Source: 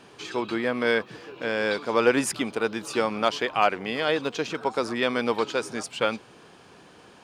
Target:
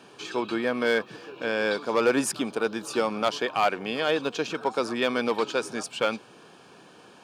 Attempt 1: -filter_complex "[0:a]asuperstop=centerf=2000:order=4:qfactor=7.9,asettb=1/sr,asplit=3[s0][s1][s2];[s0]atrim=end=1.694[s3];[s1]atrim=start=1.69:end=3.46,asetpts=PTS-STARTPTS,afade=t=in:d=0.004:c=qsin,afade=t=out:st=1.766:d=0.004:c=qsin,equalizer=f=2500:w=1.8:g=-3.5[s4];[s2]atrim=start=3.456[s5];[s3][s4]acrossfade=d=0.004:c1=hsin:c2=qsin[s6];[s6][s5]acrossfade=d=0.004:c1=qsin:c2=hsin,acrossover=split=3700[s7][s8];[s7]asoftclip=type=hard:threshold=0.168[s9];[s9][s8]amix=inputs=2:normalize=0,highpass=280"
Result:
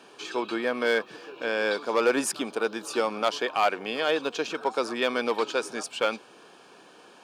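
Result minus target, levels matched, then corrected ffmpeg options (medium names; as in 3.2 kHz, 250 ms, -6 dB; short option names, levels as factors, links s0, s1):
125 Hz band -7.5 dB
-filter_complex "[0:a]asuperstop=centerf=2000:order=4:qfactor=7.9,asettb=1/sr,asplit=3[s0][s1][s2];[s0]atrim=end=1.694[s3];[s1]atrim=start=1.69:end=3.46,asetpts=PTS-STARTPTS,afade=t=in:d=0.004:c=qsin,afade=t=out:st=1.766:d=0.004:c=qsin,equalizer=f=2500:w=1.8:g=-3.5[s4];[s2]atrim=start=3.456[s5];[s3][s4]acrossfade=d=0.004:c1=hsin:c2=qsin[s6];[s6][s5]acrossfade=d=0.004:c1=qsin:c2=hsin,acrossover=split=3700[s7][s8];[s7]asoftclip=type=hard:threshold=0.168[s9];[s9][s8]amix=inputs=2:normalize=0,highpass=130"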